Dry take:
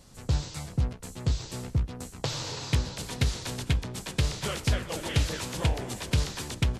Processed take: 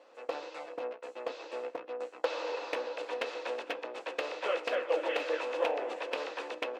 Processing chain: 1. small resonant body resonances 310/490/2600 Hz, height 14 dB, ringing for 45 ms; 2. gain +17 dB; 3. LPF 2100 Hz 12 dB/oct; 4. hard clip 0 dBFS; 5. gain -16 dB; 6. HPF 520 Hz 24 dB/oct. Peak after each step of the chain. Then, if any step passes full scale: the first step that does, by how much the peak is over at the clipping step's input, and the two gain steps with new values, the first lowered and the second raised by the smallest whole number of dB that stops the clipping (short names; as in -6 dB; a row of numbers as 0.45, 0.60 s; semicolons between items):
-8.0, +9.0, +7.5, 0.0, -16.0, -16.5 dBFS; step 2, 7.5 dB; step 2 +9 dB, step 5 -8 dB